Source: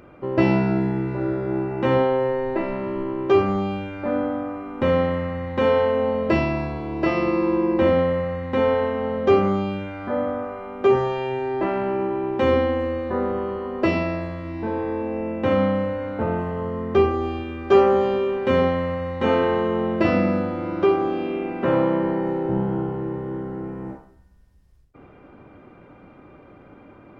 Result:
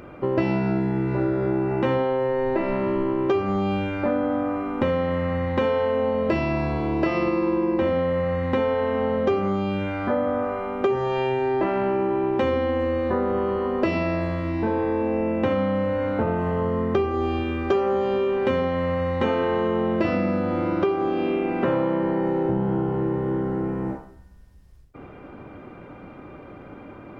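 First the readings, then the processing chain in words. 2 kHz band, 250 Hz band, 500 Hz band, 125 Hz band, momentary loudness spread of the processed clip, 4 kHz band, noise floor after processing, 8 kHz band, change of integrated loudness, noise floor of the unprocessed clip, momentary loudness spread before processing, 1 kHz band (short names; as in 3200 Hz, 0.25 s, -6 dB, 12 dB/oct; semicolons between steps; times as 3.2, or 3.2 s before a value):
-1.5 dB, -0.5 dB, -1.5 dB, 0.0 dB, 4 LU, -2.0 dB, -43 dBFS, n/a, -1.0 dB, -49 dBFS, 9 LU, -1.0 dB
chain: compressor 6:1, threshold -25 dBFS, peak gain reduction 14.5 dB; gain +5.5 dB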